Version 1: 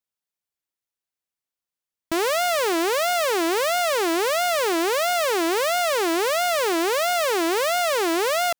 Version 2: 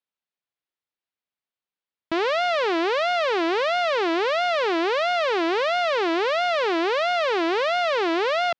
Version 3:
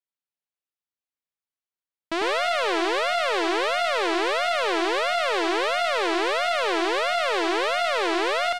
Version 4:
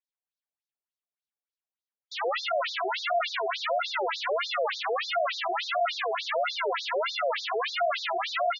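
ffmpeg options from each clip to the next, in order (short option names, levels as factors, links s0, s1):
-af "lowpass=f=4200:w=0.5412,lowpass=f=4200:w=1.3066,lowshelf=f=82:g=-10.5"
-filter_complex "[0:a]aeval=exprs='0.2*(cos(1*acos(clip(val(0)/0.2,-1,1)))-cos(1*PI/2))+0.0355*(cos(3*acos(clip(val(0)/0.2,-1,1)))-cos(3*PI/2))+0.002*(cos(7*acos(clip(val(0)/0.2,-1,1)))-cos(7*PI/2))':c=same,asplit=2[s0][s1];[s1]aecho=0:1:99:0.668[s2];[s0][s2]amix=inputs=2:normalize=0"
-af "highpass=250,lowpass=6700,afftfilt=real='re*between(b*sr/1024,520*pow(5100/520,0.5+0.5*sin(2*PI*3.4*pts/sr))/1.41,520*pow(5100/520,0.5+0.5*sin(2*PI*3.4*pts/sr))*1.41)':imag='im*between(b*sr/1024,520*pow(5100/520,0.5+0.5*sin(2*PI*3.4*pts/sr))/1.41,520*pow(5100/520,0.5+0.5*sin(2*PI*3.4*pts/sr))*1.41)':win_size=1024:overlap=0.75,volume=1.19"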